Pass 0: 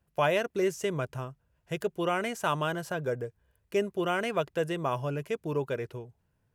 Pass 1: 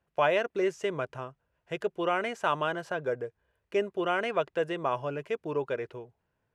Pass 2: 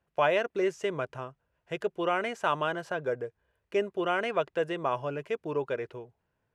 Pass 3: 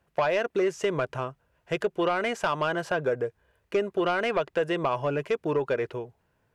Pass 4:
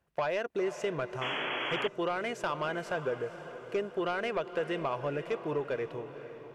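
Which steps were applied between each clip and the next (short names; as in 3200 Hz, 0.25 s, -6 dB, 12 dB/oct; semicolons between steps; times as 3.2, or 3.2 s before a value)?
LPF 8100 Hz 12 dB/oct; tone controls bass -10 dB, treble -9 dB; gain +1.5 dB
nothing audible
compressor 5:1, threshold -28 dBFS, peak gain reduction 8 dB; sine folder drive 4 dB, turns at -17.5 dBFS
diffused feedback echo 0.495 s, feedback 53%, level -12 dB; painted sound noise, 1.21–1.88, 240–3400 Hz -28 dBFS; gain -6.5 dB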